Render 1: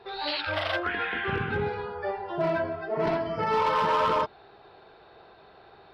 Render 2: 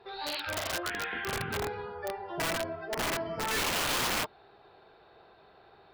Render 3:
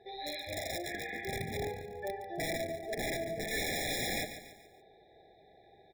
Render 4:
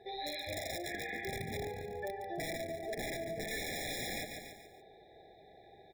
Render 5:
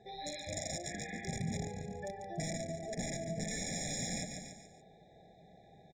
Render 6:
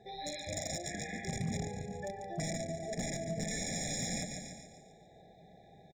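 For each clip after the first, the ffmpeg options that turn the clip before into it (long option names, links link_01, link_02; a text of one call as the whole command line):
ffmpeg -i in.wav -af "aeval=exprs='(mod(11.2*val(0)+1,2)-1)/11.2':channel_layout=same,volume=-5dB" out.wav
ffmpeg -i in.wav -filter_complex "[0:a]asplit=2[link_01][link_02];[link_02]aecho=0:1:143|286|429|572:0.282|0.121|0.0521|0.0224[link_03];[link_01][link_03]amix=inputs=2:normalize=0,afftfilt=real='re*eq(mod(floor(b*sr/1024/830),2),0)':imag='im*eq(mod(floor(b*sr/1024/830),2),0)':win_size=1024:overlap=0.75,volume=-2dB" out.wav
ffmpeg -i in.wav -af "acompressor=threshold=-39dB:ratio=6,volume=2.5dB" out.wav
ffmpeg -i in.wav -af "firequalizer=gain_entry='entry(100,0);entry(170,10);entry(370,-9);entry(560,-2);entry(1000,-7);entry(4000,-6);entry(6700,10);entry(12000,-23)':delay=0.05:min_phase=1,volume=1.5dB" out.wav
ffmpeg -i in.wav -af "aecho=1:1:402:0.126,volume=30dB,asoftclip=hard,volume=-30dB,volume=1.5dB" out.wav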